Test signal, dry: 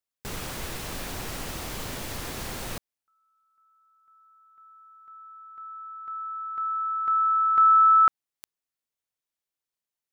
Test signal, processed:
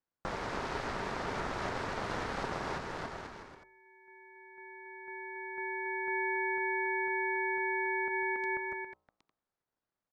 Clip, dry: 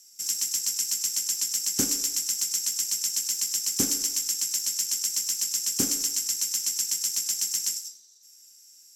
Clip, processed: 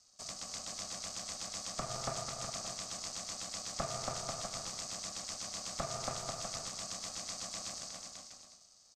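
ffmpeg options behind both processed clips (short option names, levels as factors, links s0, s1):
-filter_complex "[0:a]aemphasis=mode=reproduction:type=75fm,asplit=2[s0][s1];[s1]acompressor=threshold=0.0224:ratio=6:release=39,volume=1[s2];[s0][s2]amix=inputs=2:normalize=0,lowpass=4000,acrossover=split=210|930|2300[s3][s4][s5][s6];[s3]acompressor=threshold=0.00501:ratio=4[s7];[s4]acompressor=threshold=0.01:ratio=4[s8];[s5]acompressor=threshold=0.0631:ratio=4[s9];[s6]acompressor=threshold=0.01:ratio=4[s10];[s7][s8][s9][s10]amix=inputs=4:normalize=0,asplit=2[s11][s12];[s12]aecho=0:1:280|490|647.5|765.6|854.2:0.631|0.398|0.251|0.158|0.1[s13];[s11][s13]amix=inputs=2:normalize=0,alimiter=level_in=1.06:limit=0.0631:level=0:latency=1:release=196,volume=0.944,equalizer=f=2200:t=o:w=1.5:g=-14.5,aeval=exprs='val(0)*sin(2*PI*670*n/s)':c=same,bandreject=f=114.6:t=h:w=4,bandreject=f=229.2:t=h:w=4,bandreject=f=343.8:t=h:w=4,bandreject=f=458.4:t=h:w=4,bandreject=f=573:t=h:w=4,bandreject=f=687.6:t=h:w=4,bandreject=f=802.2:t=h:w=4,bandreject=f=916.8:t=h:w=4,bandreject=f=1031.4:t=h:w=4,aeval=exprs='val(0)*sin(2*PI*260*n/s)':c=same,volume=2.51"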